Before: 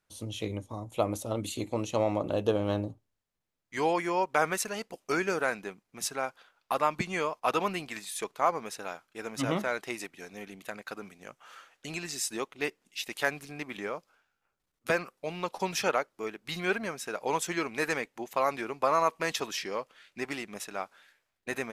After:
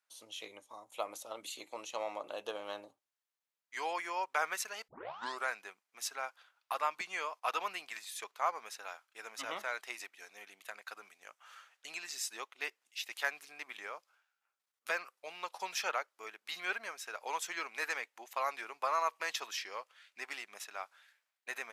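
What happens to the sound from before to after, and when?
4.88 tape start 0.59 s
whole clip: HPF 860 Hz 12 dB/oct; dynamic EQ 9300 Hz, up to -5 dB, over -53 dBFS, Q 1.9; gain -4 dB

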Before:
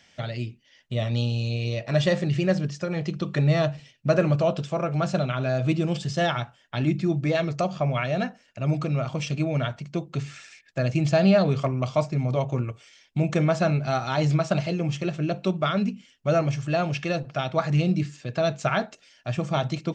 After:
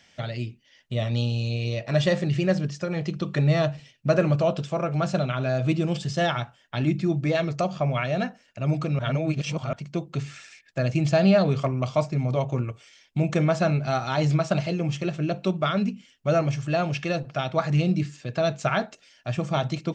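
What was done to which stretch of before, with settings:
8.99–9.73 reverse

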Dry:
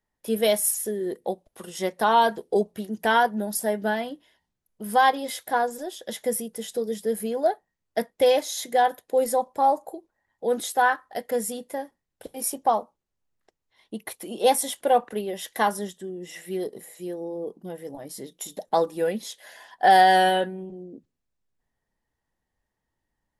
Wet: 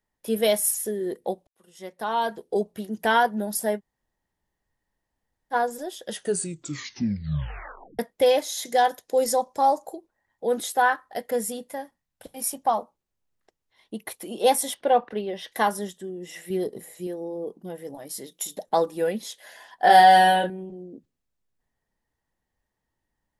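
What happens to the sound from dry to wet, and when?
1.47–2.94 fade in
3.78–5.53 room tone, crossfade 0.06 s
6.04 tape stop 1.95 s
8.65–9.96 bell 5800 Hz +11 dB 0.94 oct
11.69–12.78 bell 400 Hz -9.5 dB 0.67 oct
14.74–15.52 polynomial smoothing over 15 samples
16.5–17.07 low shelf 250 Hz +7.5 dB
17.94–18.55 tilt +1.5 dB/oct
19.84–20.5 doubler 28 ms -3 dB

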